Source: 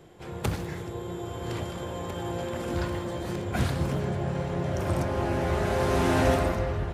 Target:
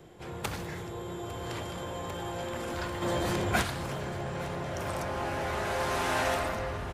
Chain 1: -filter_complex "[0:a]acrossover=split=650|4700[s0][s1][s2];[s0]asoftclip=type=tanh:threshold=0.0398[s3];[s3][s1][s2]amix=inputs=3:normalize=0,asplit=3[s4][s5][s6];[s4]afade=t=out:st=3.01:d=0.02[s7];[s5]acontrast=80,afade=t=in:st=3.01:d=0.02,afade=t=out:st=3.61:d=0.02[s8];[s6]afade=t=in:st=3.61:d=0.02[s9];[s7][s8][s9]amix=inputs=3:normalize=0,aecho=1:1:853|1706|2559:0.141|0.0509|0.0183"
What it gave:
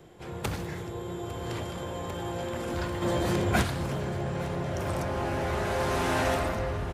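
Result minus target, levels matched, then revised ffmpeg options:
saturation: distortion -5 dB
-filter_complex "[0:a]acrossover=split=650|4700[s0][s1][s2];[s0]asoftclip=type=tanh:threshold=0.0158[s3];[s3][s1][s2]amix=inputs=3:normalize=0,asplit=3[s4][s5][s6];[s4]afade=t=out:st=3.01:d=0.02[s7];[s5]acontrast=80,afade=t=in:st=3.01:d=0.02,afade=t=out:st=3.61:d=0.02[s8];[s6]afade=t=in:st=3.61:d=0.02[s9];[s7][s8][s9]amix=inputs=3:normalize=0,aecho=1:1:853|1706|2559:0.141|0.0509|0.0183"

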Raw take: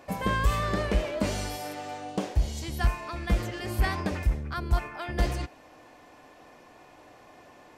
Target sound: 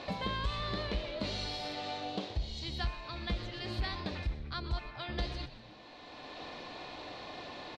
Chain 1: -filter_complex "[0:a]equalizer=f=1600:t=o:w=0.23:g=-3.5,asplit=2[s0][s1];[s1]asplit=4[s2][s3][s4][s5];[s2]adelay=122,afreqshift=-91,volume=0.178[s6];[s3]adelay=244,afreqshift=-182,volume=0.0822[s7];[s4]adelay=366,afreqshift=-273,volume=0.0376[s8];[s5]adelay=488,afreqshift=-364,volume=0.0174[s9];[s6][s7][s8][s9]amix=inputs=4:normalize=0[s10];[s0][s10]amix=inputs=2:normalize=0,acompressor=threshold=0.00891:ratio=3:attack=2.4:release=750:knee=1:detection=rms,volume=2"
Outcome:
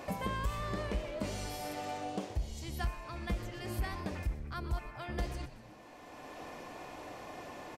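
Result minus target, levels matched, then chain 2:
4 kHz band -8.0 dB
-filter_complex "[0:a]lowpass=f=4000:t=q:w=5.5,equalizer=f=1600:t=o:w=0.23:g=-3.5,asplit=2[s0][s1];[s1]asplit=4[s2][s3][s4][s5];[s2]adelay=122,afreqshift=-91,volume=0.178[s6];[s3]adelay=244,afreqshift=-182,volume=0.0822[s7];[s4]adelay=366,afreqshift=-273,volume=0.0376[s8];[s5]adelay=488,afreqshift=-364,volume=0.0174[s9];[s6][s7][s8][s9]amix=inputs=4:normalize=0[s10];[s0][s10]amix=inputs=2:normalize=0,acompressor=threshold=0.00891:ratio=3:attack=2.4:release=750:knee=1:detection=rms,volume=2"

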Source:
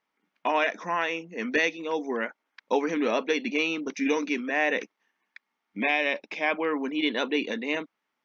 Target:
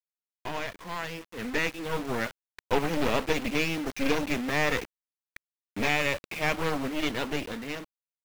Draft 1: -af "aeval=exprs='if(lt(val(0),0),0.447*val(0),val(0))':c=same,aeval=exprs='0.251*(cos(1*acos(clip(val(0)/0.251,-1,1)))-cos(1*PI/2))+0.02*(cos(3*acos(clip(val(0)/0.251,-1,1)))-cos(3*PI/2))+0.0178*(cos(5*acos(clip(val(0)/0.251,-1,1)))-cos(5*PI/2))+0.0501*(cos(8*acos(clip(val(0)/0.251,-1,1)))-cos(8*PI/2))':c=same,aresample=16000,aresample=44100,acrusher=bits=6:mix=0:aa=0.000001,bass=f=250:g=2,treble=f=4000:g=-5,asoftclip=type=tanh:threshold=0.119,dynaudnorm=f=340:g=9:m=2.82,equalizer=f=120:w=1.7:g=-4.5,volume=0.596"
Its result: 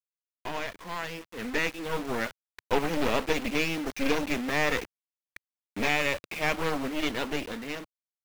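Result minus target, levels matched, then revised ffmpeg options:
125 Hz band -2.5 dB
-af "aeval=exprs='if(lt(val(0),0),0.447*val(0),val(0))':c=same,aeval=exprs='0.251*(cos(1*acos(clip(val(0)/0.251,-1,1)))-cos(1*PI/2))+0.02*(cos(3*acos(clip(val(0)/0.251,-1,1)))-cos(3*PI/2))+0.0178*(cos(5*acos(clip(val(0)/0.251,-1,1)))-cos(5*PI/2))+0.0501*(cos(8*acos(clip(val(0)/0.251,-1,1)))-cos(8*PI/2))':c=same,aresample=16000,aresample=44100,acrusher=bits=6:mix=0:aa=0.000001,bass=f=250:g=2,treble=f=4000:g=-5,asoftclip=type=tanh:threshold=0.119,dynaudnorm=f=340:g=9:m=2.82,volume=0.596"

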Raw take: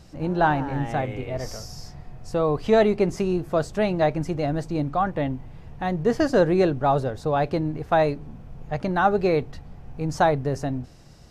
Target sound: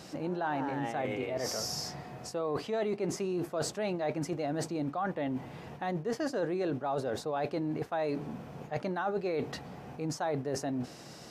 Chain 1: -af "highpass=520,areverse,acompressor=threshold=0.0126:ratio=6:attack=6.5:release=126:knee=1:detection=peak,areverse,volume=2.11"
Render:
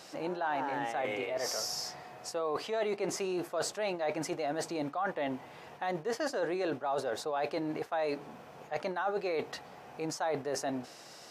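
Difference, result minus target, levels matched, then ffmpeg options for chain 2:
250 Hz band -3.5 dB
-af "highpass=230,areverse,acompressor=threshold=0.0126:ratio=6:attack=6.5:release=126:knee=1:detection=peak,areverse,volume=2.11"

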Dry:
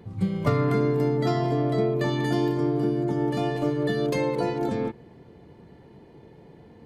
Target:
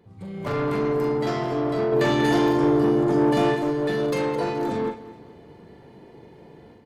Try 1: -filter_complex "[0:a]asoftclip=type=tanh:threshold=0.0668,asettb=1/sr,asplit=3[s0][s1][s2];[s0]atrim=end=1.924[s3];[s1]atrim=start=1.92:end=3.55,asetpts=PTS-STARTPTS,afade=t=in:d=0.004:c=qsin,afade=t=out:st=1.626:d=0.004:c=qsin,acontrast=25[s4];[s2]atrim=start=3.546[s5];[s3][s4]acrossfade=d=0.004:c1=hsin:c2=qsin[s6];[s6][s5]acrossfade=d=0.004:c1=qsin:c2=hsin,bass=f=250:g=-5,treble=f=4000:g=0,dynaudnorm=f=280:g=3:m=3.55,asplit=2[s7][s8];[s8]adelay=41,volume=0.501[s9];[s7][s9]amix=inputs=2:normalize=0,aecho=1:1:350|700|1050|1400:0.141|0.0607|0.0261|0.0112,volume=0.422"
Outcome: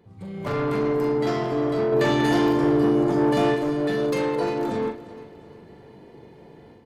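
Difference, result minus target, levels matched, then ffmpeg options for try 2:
echo 138 ms late
-filter_complex "[0:a]asoftclip=type=tanh:threshold=0.0668,asettb=1/sr,asplit=3[s0][s1][s2];[s0]atrim=end=1.924[s3];[s1]atrim=start=1.92:end=3.55,asetpts=PTS-STARTPTS,afade=t=in:d=0.004:c=qsin,afade=t=out:st=1.626:d=0.004:c=qsin,acontrast=25[s4];[s2]atrim=start=3.546[s5];[s3][s4]acrossfade=d=0.004:c1=hsin:c2=qsin[s6];[s6][s5]acrossfade=d=0.004:c1=qsin:c2=hsin,bass=f=250:g=-5,treble=f=4000:g=0,dynaudnorm=f=280:g=3:m=3.55,asplit=2[s7][s8];[s8]adelay=41,volume=0.501[s9];[s7][s9]amix=inputs=2:normalize=0,aecho=1:1:212|424|636|848:0.141|0.0607|0.0261|0.0112,volume=0.422"

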